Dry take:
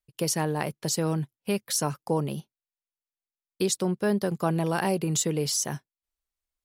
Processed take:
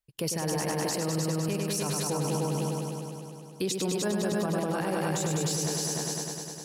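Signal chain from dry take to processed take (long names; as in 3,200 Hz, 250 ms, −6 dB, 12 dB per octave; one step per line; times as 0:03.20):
on a send: echo machine with several playback heads 101 ms, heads all three, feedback 61%, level −6 dB
on the sum: brickwall limiter −20.5 dBFS, peak gain reduction 11 dB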